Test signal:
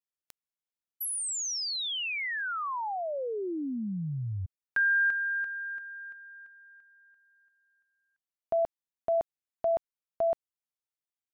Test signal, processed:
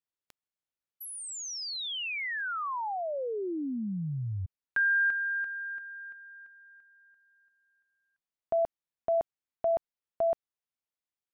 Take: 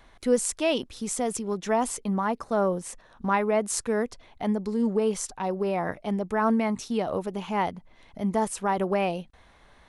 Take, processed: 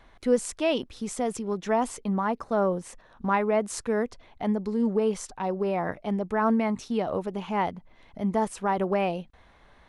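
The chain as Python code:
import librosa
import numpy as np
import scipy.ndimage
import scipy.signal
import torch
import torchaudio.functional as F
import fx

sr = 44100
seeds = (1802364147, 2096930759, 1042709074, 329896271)

y = fx.high_shelf(x, sr, hz=5900.0, db=-10.0)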